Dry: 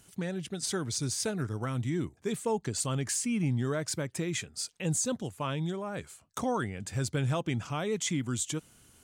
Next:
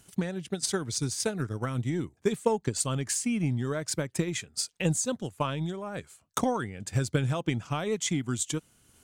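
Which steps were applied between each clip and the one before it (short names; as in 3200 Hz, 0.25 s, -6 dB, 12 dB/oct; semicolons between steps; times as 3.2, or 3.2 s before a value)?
transient shaper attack +8 dB, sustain -4 dB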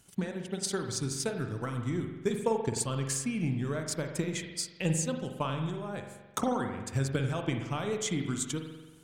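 spring tank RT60 1.2 s, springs 44 ms, chirp 40 ms, DRR 4.5 dB; gain -3.5 dB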